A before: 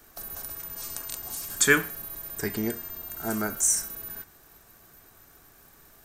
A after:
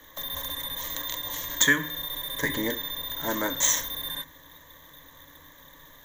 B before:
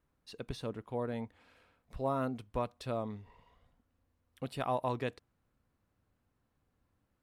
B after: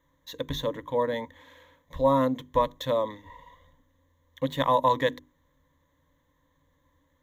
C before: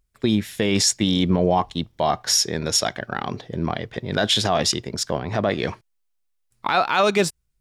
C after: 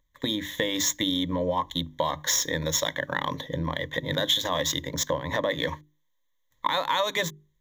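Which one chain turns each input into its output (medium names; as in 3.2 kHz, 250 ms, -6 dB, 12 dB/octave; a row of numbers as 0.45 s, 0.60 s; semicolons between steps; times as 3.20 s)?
median filter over 5 samples; rippled EQ curve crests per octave 1.1, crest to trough 17 dB; compression 6:1, threshold -22 dBFS; bass shelf 490 Hz -5 dB; hum notches 50/100/150/200/250/300/350/400 Hz; normalise loudness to -27 LUFS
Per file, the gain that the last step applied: +5.5 dB, +9.5 dB, +1.0 dB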